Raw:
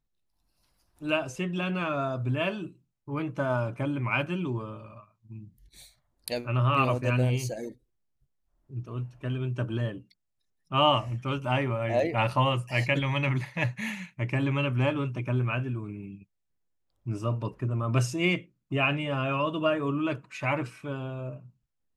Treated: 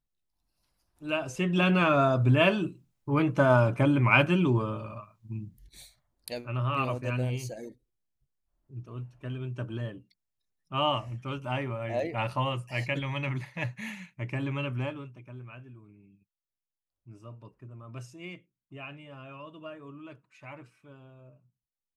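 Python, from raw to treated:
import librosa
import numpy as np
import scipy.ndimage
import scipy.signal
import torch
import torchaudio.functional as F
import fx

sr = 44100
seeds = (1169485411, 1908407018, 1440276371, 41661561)

y = fx.gain(x, sr, db=fx.line((1.04, -5.0), (1.62, 6.5), (5.35, 6.5), (6.29, -5.0), (14.76, -5.0), (15.2, -17.0)))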